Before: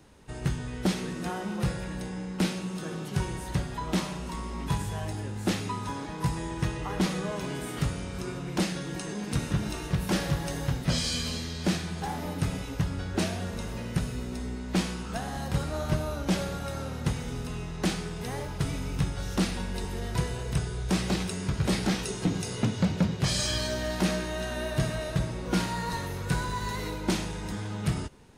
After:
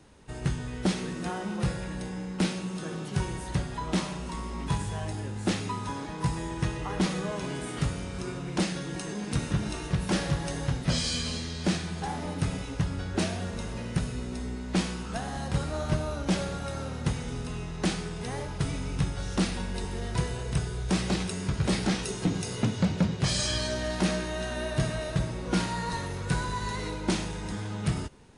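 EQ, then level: brick-wall FIR low-pass 11000 Hz; 0.0 dB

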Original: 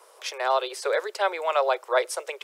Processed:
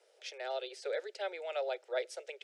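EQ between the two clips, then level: air absorption 90 m; low shelf 340 Hz -7.5 dB; fixed phaser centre 440 Hz, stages 4; -7.5 dB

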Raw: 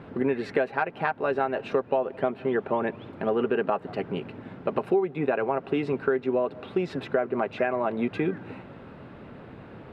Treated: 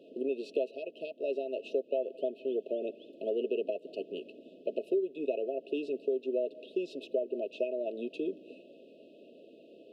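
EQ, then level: HPF 300 Hz 24 dB/oct; brick-wall FIR band-stop 690–2500 Hz; -5.5 dB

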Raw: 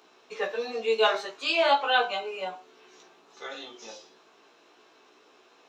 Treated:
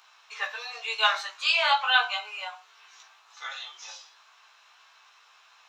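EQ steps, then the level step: HPF 940 Hz 24 dB/oct; +4.0 dB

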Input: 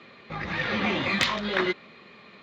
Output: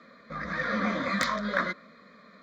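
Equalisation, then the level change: dynamic EQ 1100 Hz, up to +3 dB, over -36 dBFS, Q 1; fixed phaser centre 560 Hz, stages 8; 0.0 dB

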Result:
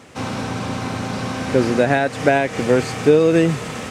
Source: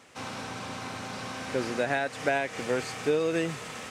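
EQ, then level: low shelf 490 Hz +10 dB; +7.5 dB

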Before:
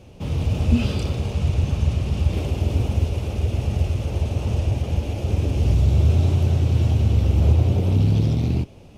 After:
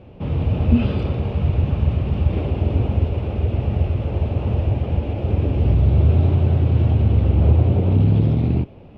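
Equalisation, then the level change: air absorption 460 m; low shelf 110 Hz -5 dB; +5.0 dB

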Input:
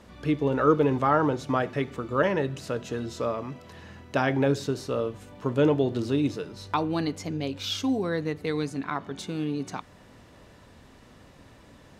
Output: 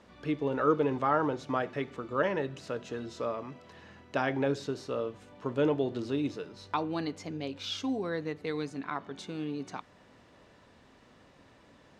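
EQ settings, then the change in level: air absorption 55 m; low shelf 140 Hz -10 dB; -4.0 dB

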